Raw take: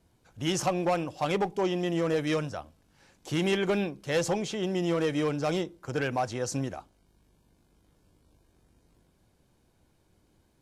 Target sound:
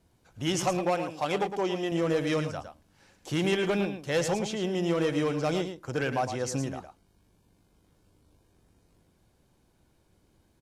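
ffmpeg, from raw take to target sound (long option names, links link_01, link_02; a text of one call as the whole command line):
ffmpeg -i in.wav -filter_complex "[0:a]asettb=1/sr,asplit=3[link_01][link_02][link_03];[link_01]atrim=end=0.794[link_04];[link_02]atrim=start=0.79:end=1.92,asetpts=PTS-STARTPTS,afade=type=in:duration=0.004:curve=qsin,afade=type=out:start_time=1.126:duration=0.004:curve=qsin,lowshelf=frequency=150:gain=-10.5[link_05];[link_03]atrim=start=1.916[link_06];[link_04][link_05]acrossfade=duration=0.004:curve1=hsin:curve2=qsin[link_07];[link_07][link_06]acrossfade=duration=0.004:curve1=qsin:curve2=hsin,aecho=1:1:110:0.355" out.wav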